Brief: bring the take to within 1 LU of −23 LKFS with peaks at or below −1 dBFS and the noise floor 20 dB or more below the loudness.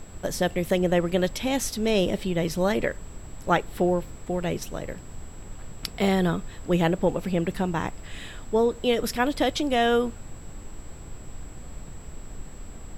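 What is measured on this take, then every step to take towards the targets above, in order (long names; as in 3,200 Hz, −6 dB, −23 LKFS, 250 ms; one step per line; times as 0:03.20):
interfering tone 7,700 Hz; level of the tone −52 dBFS; background noise floor −42 dBFS; target noise floor −46 dBFS; integrated loudness −25.5 LKFS; sample peak −8.0 dBFS; target loudness −23.0 LKFS
→ notch filter 7,700 Hz, Q 30
noise reduction from a noise print 6 dB
level +2.5 dB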